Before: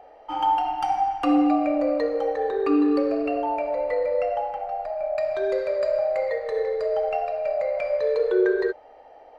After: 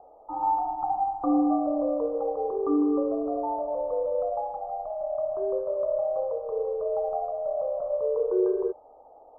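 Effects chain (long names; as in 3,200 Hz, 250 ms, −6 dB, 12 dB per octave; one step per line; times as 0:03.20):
Butterworth low-pass 1,200 Hz 72 dB per octave
level −3.5 dB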